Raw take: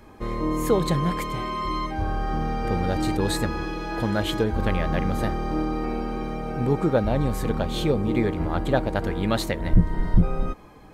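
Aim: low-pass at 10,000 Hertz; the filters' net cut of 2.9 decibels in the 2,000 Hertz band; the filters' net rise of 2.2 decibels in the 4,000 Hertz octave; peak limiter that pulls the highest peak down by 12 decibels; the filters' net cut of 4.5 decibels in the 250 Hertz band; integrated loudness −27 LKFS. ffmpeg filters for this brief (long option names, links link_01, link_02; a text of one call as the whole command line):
ffmpeg -i in.wav -af "lowpass=10000,equalizer=frequency=250:width_type=o:gain=-6.5,equalizer=frequency=2000:width_type=o:gain=-4.5,equalizer=frequency=4000:width_type=o:gain=4,volume=4dB,alimiter=limit=-16.5dB:level=0:latency=1" out.wav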